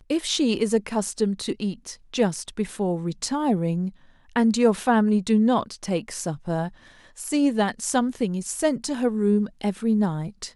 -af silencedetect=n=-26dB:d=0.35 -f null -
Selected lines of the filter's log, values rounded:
silence_start: 3.88
silence_end: 4.36 | silence_duration: 0.48
silence_start: 6.68
silence_end: 7.20 | silence_duration: 0.52